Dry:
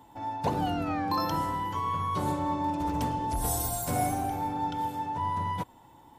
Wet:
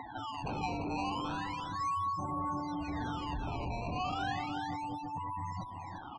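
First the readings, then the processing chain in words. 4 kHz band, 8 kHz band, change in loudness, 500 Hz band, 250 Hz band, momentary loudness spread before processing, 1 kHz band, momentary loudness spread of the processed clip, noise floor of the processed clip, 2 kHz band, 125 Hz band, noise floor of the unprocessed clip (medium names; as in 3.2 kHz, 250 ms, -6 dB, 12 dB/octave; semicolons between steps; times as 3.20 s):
-2.5 dB, -19.0 dB, -6.5 dB, -8.5 dB, -6.5 dB, 4 LU, -6.5 dB, 5 LU, -45 dBFS, -0.5 dB, -6.5 dB, -55 dBFS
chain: valve stage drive 38 dB, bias 0.4; small resonant body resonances 760/1100 Hz, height 11 dB, ringing for 25 ms; decimation with a swept rate 15×, swing 160% 0.34 Hz; dynamic bell 780 Hz, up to -6 dB, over -45 dBFS, Q 0.78; upward compressor, threshold -40 dBFS; spectral gate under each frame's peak -15 dB strong; tape spacing loss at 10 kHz 20 dB; on a send: delay 344 ms -6.5 dB; on the sum: trim +4 dB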